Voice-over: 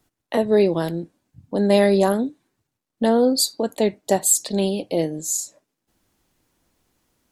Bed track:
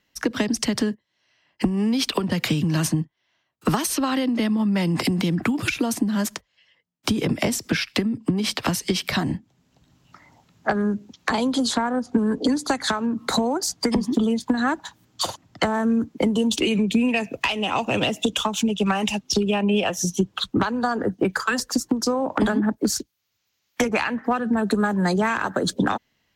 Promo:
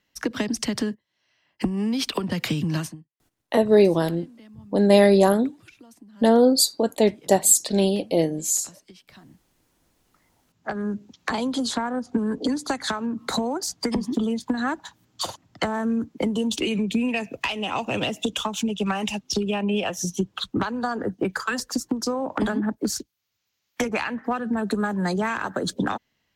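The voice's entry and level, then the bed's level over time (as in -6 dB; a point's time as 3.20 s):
3.20 s, +1.0 dB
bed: 2.77 s -3 dB
3.04 s -26 dB
9.64 s -26 dB
10.95 s -3.5 dB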